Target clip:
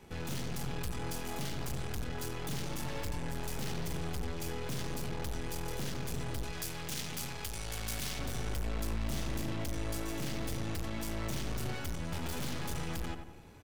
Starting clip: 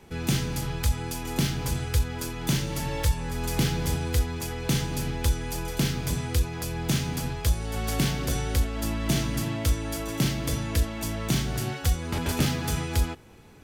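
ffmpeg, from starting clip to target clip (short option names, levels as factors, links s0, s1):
-filter_complex "[0:a]aeval=exprs='(tanh(70.8*val(0)+0.75)-tanh(0.75))/70.8':c=same,asettb=1/sr,asplit=3[s0][s1][s2];[s0]atrim=end=6.444[s3];[s1]atrim=start=6.44:end=8.19,asetpts=PTS-STARTPTS,afade=t=in:d=0.004:c=qsin,afade=t=out:st=1.746:d=0.004:c=qsin,tiltshelf=f=1400:g=-5.5[s4];[s2]atrim=start=8.186[s5];[s3][s4]acrossfade=d=0.004:c1=hsin:c2=qsin[s6];[s6][s5]acrossfade=d=0.004:c1=qsin:c2=hsin,asplit=2[s7][s8];[s8]adelay=91,lowpass=f=1900:p=1,volume=0.501,asplit=2[s9][s10];[s10]adelay=91,lowpass=f=1900:p=1,volume=0.5,asplit=2[s11][s12];[s12]adelay=91,lowpass=f=1900:p=1,volume=0.5,asplit=2[s13][s14];[s14]adelay=91,lowpass=f=1900:p=1,volume=0.5,asplit=2[s15][s16];[s16]adelay=91,lowpass=f=1900:p=1,volume=0.5,asplit=2[s17][s18];[s18]adelay=91,lowpass=f=1900:p=1,volume=0.5[s19];[s7][s9][s11][s13][s15][s17][s19]amix=inputs=7:normalize=0"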